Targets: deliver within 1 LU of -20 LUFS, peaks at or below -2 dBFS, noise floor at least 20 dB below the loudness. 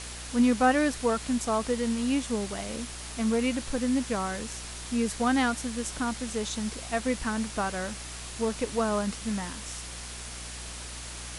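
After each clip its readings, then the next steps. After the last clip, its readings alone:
hum 60 Hz; harmonics up to 360 Hz; hum level -42 dBFS; noise floor -40 dBFS; noise floor target -50 dBFS; loudness -29.5 LUFS; peak -12.0 dBFS; loudness target -20.0 LUFS
-> de-hum 60 Hz, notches 6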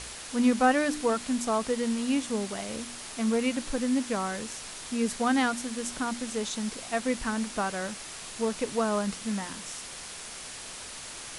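hum none; noise floor -42 dBFS; noise floor target -50 dBFS
-> denoiser 8 dB, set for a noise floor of -42 dBFS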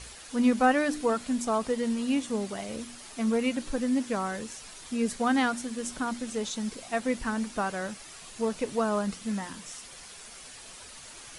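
noise floor -47 dBFS; noise floor target -50 dBFS
-> denoiser 6 dB, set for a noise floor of -47 dBFS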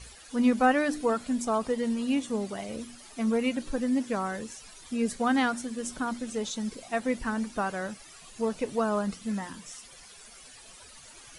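noise floor -51 dBFS; loudness -29.5 LUFS; peak -12.5 dBFS; loudness target -20.0 LUFS
-> gain +9.5 dB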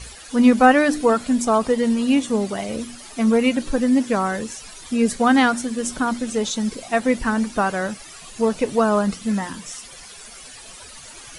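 loudness -20.0 LUFS; peak -3.0 dBFS; noise floor -41 dBFS

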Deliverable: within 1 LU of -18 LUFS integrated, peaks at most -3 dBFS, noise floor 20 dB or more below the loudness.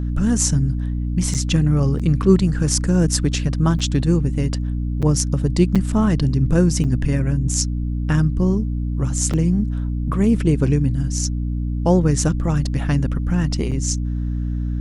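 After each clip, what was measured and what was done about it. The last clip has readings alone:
dropouts 8; longest dropout 6.5 ms; hum 60 Hz; harmonics up to 300 Hz; hum level -20 dBFS; loudness -19.5 LUFS; peak -2.0 dBFS; loudness target -18.0 LUFS
-> interpolate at 1.34/1.99/3.79/5.02/5.75/6.84/9.33/13.71, 6.5 ms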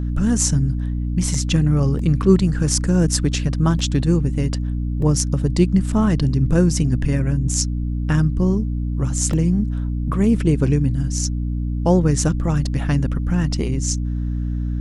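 dropouts 0; hum 60 Hz; harmonics up to 300 Hz; hum level -20 dBFS
-> notches 60/120/180/240/300 Hz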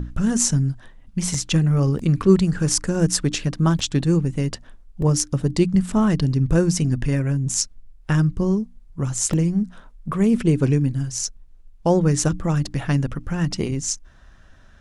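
hum none; loudness -21.0 LUFS; peak -1.5 dBFS; loudness target -18.0 LUFS
-> gain +3 dB; limiter -3 dBFS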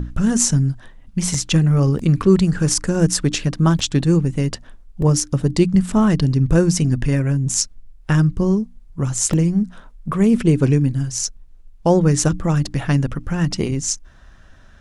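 loudness -18.5 LUFS; peak -3.0 dBFS; noise floor -45 dBFS

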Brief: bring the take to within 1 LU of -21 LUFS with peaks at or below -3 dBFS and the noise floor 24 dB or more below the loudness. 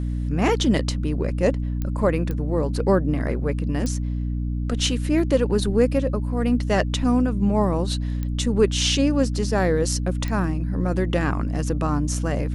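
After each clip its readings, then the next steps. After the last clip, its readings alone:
clicks 5; hum 60 Hz; harmonics up to 300 Hz; hum level -23 dBFS; loudness -22.5 LUFS; peak -6.0 dBFS; loudness target -21.0 LUFS
-> de-click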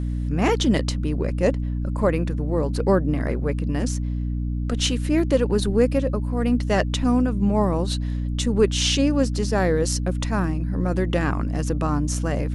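clicks 0; hum 60 Hz; harmonics up to 300 Hz; hum level -23 dBFS
-> notches 60/120/180/240/300 Hz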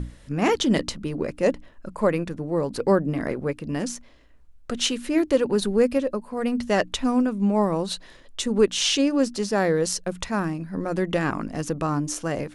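hum none; loudness -24.5 LUFS; peak -7.0 dBFS; loudness target -21.0 LUFS
-> gain +3.5 dB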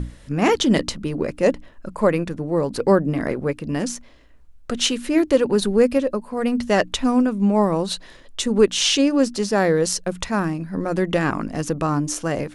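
loudness -21.0 LUFS; peak -3.5 dBFS; noise floor -46 dBFS

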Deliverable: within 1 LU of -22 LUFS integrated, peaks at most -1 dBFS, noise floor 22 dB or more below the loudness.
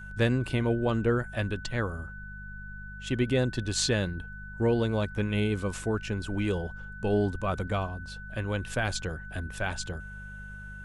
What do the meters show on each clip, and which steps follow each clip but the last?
hum 50 Hz; harmonics up to 200 Hz; hum level -42 dBFS; steady tone 1500 Hz; tone level -43 dBFS; loudness -30.0 LUFS; peak -10.5 dBFS; loudness target -22.0 LUFS
-> de-hum 50 Hz, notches 4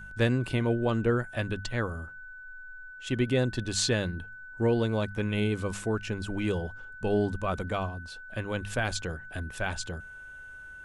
hum none; steady tone 1500 Hz; tone level -43 dBFS
-> notch 1500 Hz, Q 30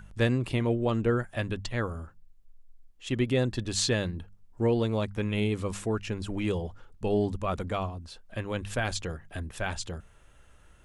steady tone none; loudness -30.5 LUFS; peak -10.5 dBFS; loudness target -22.0 LUFS
-> gain +8.5 dB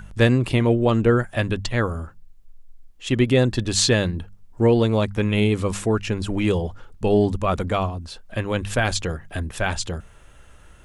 loudness -22.0 LUFS; peak -2.0 dBFS; noise floor -49 dBFS

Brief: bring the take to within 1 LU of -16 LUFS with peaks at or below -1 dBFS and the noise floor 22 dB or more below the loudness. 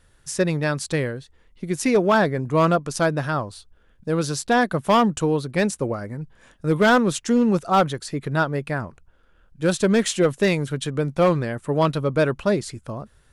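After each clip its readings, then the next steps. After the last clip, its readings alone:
clipped 0.8%; flat tops at -11.0 dBFS; loudness -22.0 LUFS; peak -11.0 dBFS; loudness target -16.0 LUFS
-> clip repair -11 dBFS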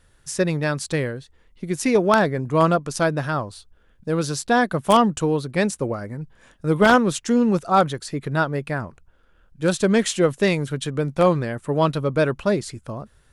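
clipped 0.0%; loudness -21.5 LUFS; peak -2.0 dBFS; loudness target -16.0 LUFS
-> gain +5.5 dB; limiter -1 dBFS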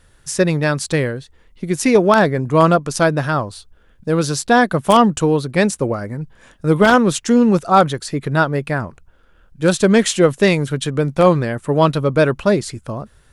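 loudness -16.0 LUFS; peak -1.0 dBFS; noise floor -52 dBFS

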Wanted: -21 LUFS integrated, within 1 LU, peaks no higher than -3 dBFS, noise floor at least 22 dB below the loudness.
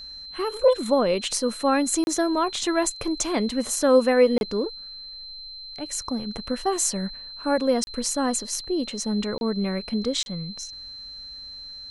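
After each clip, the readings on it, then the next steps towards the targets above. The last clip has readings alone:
dropouts 5; longest dropout 31 ms; steady tone 4100 Hz; tone level -37 dBFS; loudness -24.0 LUFS; peak -7.0 dBFS; loudness target -21.0 LUFS
-> interpolate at 2.04/4.38/7.84/9.38/10.23, 31 ms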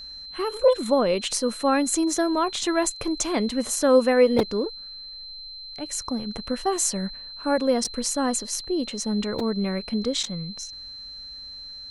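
dropouts 0; steady tone 4100 Hz; tone level -37 dBFS
-> notch 4100 Hz, Q 30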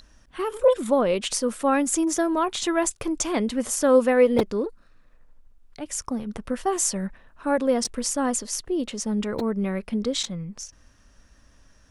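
steady tone none; loudness -24.5 LUFS; peak -7.0 dBFS; loudness target -21.0 LUFS
-> gain +3.5 dB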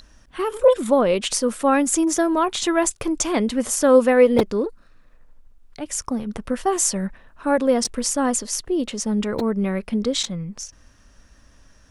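loudness -21.0 LUFS; peak -3.5 dBFS; noise floor -53 dBFS

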